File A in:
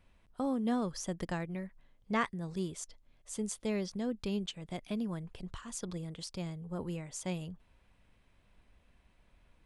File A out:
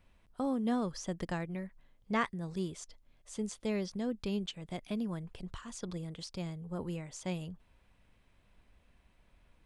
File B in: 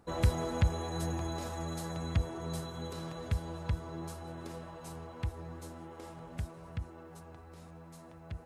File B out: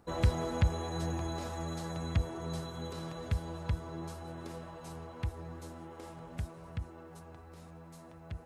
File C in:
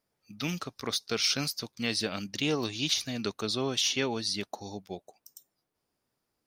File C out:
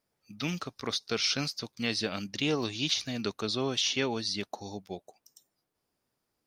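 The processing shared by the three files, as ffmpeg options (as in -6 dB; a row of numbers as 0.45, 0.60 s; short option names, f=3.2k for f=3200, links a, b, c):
-filter_complex "[0:a]acrossover=split=6900[a][b];[b]acompressor=threshold=-57dB:ratio=4:attack=1:release=60[c];[a][c]amix=inputs=2:normalize=0"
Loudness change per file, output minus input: 0.0, 0.0, -1.0 LU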